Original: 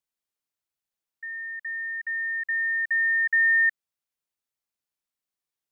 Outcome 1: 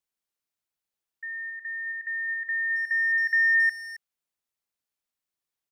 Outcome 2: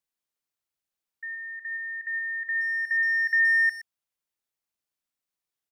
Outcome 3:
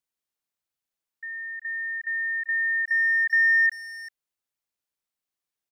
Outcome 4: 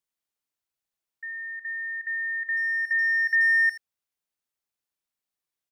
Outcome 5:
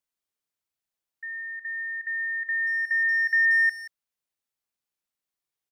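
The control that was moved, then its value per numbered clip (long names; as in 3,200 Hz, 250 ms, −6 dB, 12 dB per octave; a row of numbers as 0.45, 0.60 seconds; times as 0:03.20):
far-end echo of a speakerphone, delay time: 270, 120, 390, 80, 180 milliseconds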